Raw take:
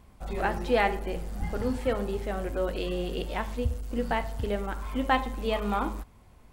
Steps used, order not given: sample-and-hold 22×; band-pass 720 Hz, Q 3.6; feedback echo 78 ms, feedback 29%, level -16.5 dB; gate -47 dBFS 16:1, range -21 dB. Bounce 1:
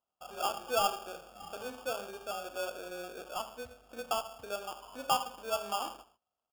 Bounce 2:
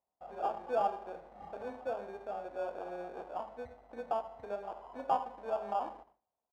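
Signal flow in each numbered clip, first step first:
feedback echo > gate > band-pass > sample-and-hold; gate > feedback echo > sample-and-hold > band-pass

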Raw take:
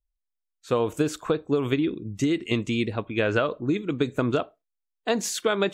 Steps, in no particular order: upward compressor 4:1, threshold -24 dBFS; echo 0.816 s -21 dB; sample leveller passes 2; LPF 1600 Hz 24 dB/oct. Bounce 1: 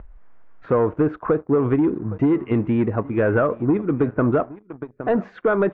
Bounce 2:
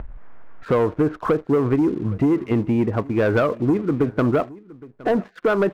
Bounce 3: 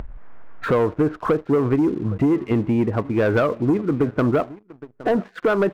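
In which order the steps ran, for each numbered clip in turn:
echo > sample leveller > upward compressor > LPF; upward compressor > LPF > sample leveller > echo; LPF > upward compressor > echo > sample leveller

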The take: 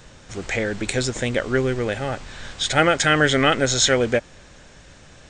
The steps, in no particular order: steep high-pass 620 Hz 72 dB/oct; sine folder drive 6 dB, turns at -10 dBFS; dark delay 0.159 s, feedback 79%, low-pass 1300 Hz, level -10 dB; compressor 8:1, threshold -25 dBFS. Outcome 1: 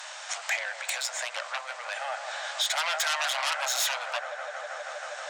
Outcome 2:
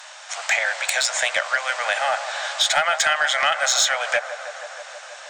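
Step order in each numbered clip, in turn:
dark delay > sine folder > compressor > steep high-pass; steep high-pass > compressor > dark delay > sine folder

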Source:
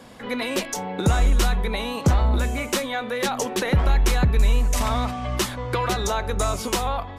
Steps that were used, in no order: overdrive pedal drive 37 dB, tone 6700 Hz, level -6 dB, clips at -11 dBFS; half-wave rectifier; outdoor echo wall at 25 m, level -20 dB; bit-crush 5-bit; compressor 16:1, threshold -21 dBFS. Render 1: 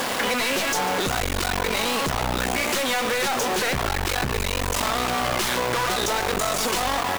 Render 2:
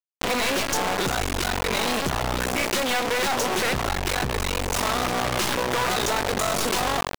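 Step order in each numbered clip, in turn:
outdoor echo > half-wave rectifier > overdrive pedal > compressor > bit-crush; half-wave rectifier > outdoor echo > bit-crush > overdrive pedal > compressor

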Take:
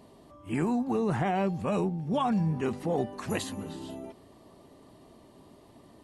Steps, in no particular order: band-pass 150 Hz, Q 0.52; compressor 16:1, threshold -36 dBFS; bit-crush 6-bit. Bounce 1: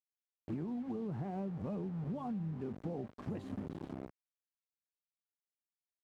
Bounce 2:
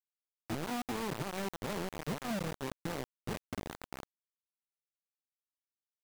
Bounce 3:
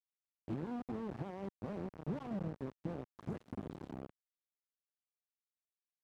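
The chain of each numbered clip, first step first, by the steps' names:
bit-crush > band-pass > compressor; band-pass > compressor > bit-crush; compressor > bit-crush > band-pass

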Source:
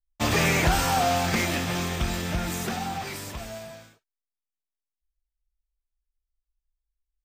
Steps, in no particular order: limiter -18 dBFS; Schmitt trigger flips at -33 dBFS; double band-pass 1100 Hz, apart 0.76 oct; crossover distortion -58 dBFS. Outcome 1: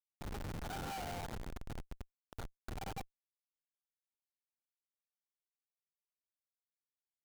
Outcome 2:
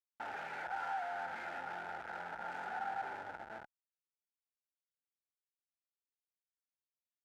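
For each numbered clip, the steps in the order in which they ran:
crossover distortion > limiter > double band-pass > Schmitt trigger; limiter > Schmitt trigger > crossover distortion > double band-pass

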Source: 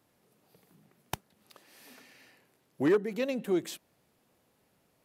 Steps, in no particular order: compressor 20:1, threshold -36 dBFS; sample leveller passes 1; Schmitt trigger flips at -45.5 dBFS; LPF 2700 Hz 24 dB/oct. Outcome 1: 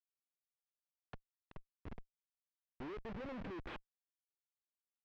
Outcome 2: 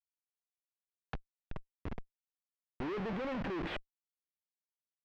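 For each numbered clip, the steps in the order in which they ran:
compressor > Schmitt trigger > LPF > sample leveller; Schmitt trigger > LPF > sample leveller > compressor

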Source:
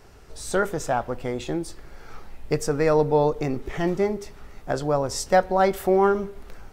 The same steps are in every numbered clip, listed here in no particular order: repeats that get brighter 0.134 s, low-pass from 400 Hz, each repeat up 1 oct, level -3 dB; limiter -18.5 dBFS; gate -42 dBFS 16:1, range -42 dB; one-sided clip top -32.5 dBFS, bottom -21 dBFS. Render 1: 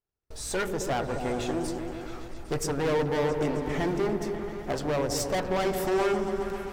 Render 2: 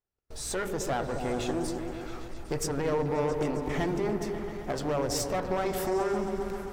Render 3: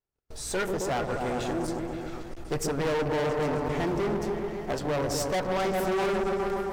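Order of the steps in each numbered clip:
gate > one-sided clip > limiter > repeats that get brighter; limiter > one-sided clip > repeats that get brighter > gate; repeats that get brighter > gate > one-sided clip > limiter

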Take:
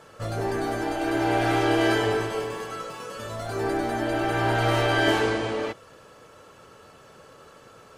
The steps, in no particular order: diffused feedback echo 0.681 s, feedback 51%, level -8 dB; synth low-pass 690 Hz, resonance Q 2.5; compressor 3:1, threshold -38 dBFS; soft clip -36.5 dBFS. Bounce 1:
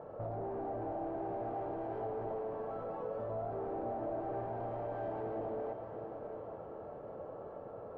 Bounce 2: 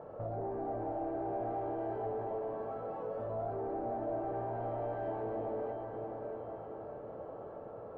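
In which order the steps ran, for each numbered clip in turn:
soft clip > synth low-pass > compressor > diffused feedback echo; compressor > diffused feedback echo > soft clip > synth low-pass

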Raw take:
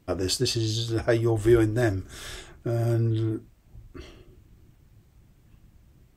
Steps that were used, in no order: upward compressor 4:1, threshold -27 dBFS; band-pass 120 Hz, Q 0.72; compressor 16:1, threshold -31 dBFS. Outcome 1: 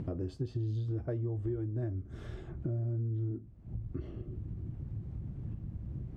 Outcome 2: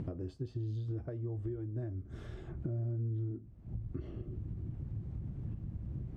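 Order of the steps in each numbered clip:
upward compressor > band-pass > compressor; upward compressor > compressor > band-pass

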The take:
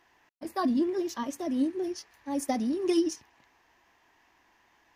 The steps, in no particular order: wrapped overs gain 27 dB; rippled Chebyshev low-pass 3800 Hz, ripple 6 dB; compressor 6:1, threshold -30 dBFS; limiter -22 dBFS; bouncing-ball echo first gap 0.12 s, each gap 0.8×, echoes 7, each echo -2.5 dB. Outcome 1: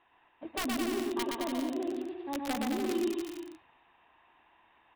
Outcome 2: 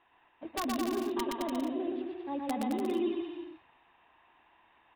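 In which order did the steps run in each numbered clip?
limiter > rippled Chebyshev low-pass > wrapped overs > compressor > bouncing-ball echo; limiter > rippled Chebyshev low-pass > compressor > wrapped overs > bouncing-ball echo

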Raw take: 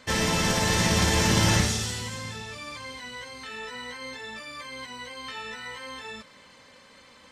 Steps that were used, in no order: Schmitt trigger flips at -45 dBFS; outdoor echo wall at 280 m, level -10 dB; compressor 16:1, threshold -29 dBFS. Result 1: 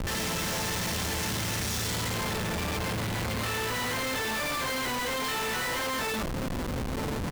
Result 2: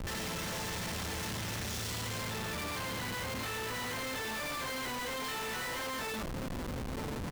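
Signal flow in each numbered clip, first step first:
outdoor echo > Schmitt trigger > compressor; compressor > outdoor echo > Schmitt trigger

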